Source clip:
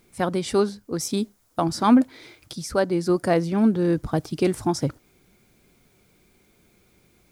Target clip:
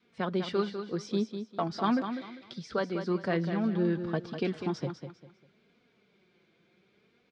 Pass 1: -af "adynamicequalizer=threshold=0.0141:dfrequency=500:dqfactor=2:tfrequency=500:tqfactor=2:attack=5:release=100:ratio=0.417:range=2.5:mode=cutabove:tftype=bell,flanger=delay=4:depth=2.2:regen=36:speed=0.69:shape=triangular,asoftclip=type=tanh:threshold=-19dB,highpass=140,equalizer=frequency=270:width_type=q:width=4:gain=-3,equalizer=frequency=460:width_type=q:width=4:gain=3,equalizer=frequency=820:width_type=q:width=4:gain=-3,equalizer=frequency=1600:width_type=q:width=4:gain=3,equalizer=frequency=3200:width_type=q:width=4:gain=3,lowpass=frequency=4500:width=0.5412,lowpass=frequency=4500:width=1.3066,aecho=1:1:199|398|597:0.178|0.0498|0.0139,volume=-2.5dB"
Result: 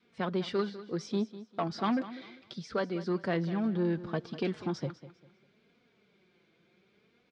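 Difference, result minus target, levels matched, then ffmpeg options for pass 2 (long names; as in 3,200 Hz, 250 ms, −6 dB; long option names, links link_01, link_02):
soft clipping: distortion +10 dB; echo-to-direct −6.5 dB
-af "adynamicequalizer=threshold=0.0141:dfrequency=500:dqfactor=2:tfrequency=500:tqfactor=2:attack=5:release=100:ratio=0.417:range=2.5:mode=cutabove:tftype=bell,flanger=delay=4:depth=2.2:regen=36:speed=0.69:shape=triangular,asoftclip=type=tanh:threshold=-12.5dB,highpass=140,equalizer=frequency=270:width_type=q:width=4:gain=-3,equalizer=frequency=460:width_type=q:width=4:gain=3,equalizer=frequency=820:width_type=q:width=4:gain=-3,equalizer=frequency=1600:width_type=q:width=4:gain=3,equalizer=frequency=3200:width_type=q:width=4:gain=3,lowpass=frequency=4500:width=0.5412,lowpass=frequency=4500:width=1.3066,aecho=1:1:199|398|597:0.376|0.105|0.0295,volume=-2.5dB"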